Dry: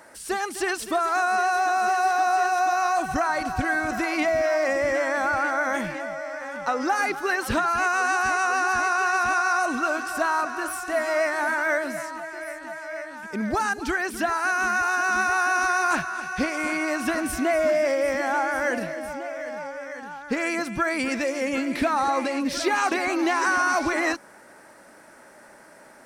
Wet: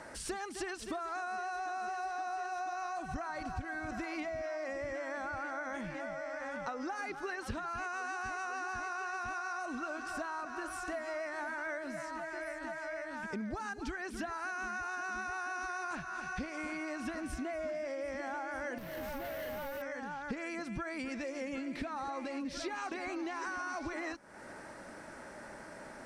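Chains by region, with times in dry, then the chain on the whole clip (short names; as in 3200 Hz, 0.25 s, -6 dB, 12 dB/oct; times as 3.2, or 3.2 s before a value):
18.78–19.82 CVSD 64 kbps + overloaded stage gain 34 dB + careless resampling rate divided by 3×, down filtered, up zero stuff
whole clip: LPF 7700 Hz 12 dB/oct; low shelf 160 Hz +11 dB; compressor 6:1, threshold -38 dBFS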